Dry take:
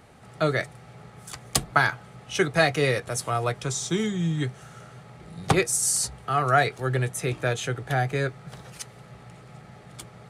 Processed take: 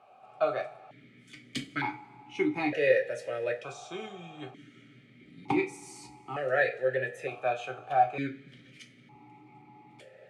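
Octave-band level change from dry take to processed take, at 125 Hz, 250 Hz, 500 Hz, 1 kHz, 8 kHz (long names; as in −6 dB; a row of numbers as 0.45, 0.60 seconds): −18.0, −5.5, −2.5, −4.5, −24.0 decibels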